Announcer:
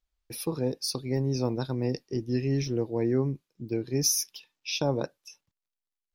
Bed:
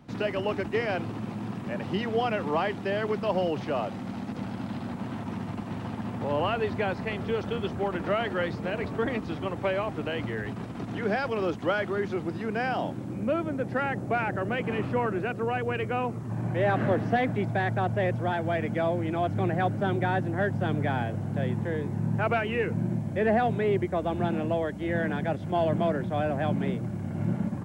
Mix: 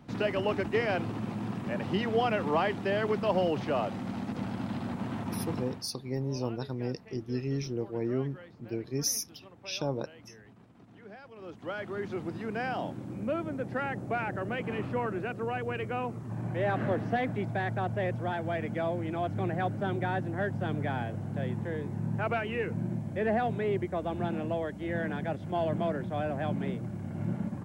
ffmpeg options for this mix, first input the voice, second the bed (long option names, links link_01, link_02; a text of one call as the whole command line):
ffmpeg -i stem1.wav -i stem2.wav -filter_complex "[0:a]adelay=5000,volume=-5dB[link_01];[1:a]volume=16dB,afade=type=out:start_time=5.56:duration=0.3:silence=0.0944061,afade=type=in:start_time=11.35:duration=0.86:silence=0.149624[link_02];[link_01][link_02]amix=inputs=2:normalize=0" out.wav